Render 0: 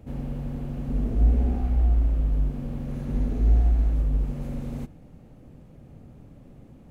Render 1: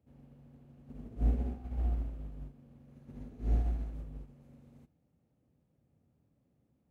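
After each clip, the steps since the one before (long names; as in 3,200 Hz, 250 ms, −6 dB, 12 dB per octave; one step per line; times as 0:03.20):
high-pass filter 59 Hz 24 dB per octave
expander for the loud parts 2.5 to 1, over −33 dBFS
level −3.5 dB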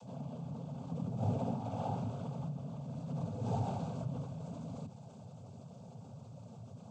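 cochlear-implant simulation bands 16
phaser with its sweep stopped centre 780 Hz, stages 4
envelope flattener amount 50%
level +7.5 dB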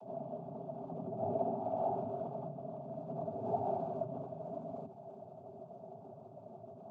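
in parallel at −0.5 dB: brickwall limiter −31.5 dBFS, peak gain reduction 8.5 dB
on the sum: pair of resonant band-passes 500 Hz, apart 0.74 octaves
level +7 dB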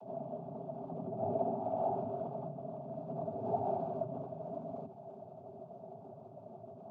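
high-frequency loss of the air 63 metres
level +1 dB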